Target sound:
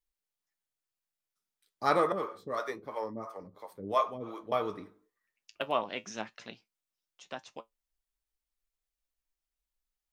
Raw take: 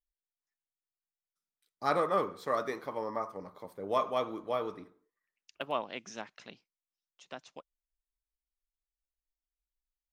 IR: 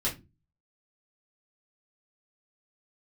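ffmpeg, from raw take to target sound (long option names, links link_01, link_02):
-filter_complex "[0:a]asettb=1/sr,asplit=3[link_01][link_02][link_03];[link_01]atrim=end=2.124[link_04];[link_02]atrim=start=2.12:end=4.52,asetpts=PTS-STARTPTS,afade=type=in:duration=0.004:curve=qsin,afade=type=out:start_time=2.396:duration=0.004:curve=qsin,acrossover=split=410[link_05][link_06];[link_05]aeval=exprs='val(0)*(1-1/2+1/2*cos(2*PI*2.9*n/s))':channel_layout=same[link_07];[link_06]aeval=exprs='val(0)*(1-1/2-1/2*cos(2*PI*2.9*n/s))':channel_layout=same[link_08];[link_07][link_08]amix=inputs=2:normalize=0[link_09];[link_03]atrim=start=4.516[link_10];[link_04][link_09]acrossfade=duration=0.004:curve1=hsin:curve2=qsin[link_11];[link_11][link_10]acrossfade=duration=0.004:curve1=qsin:curve2=hsin,flanger=delay=8.7:depth=1.2:regen=63:speed=0.93:shape=sinusoidal,volume=7.5dB"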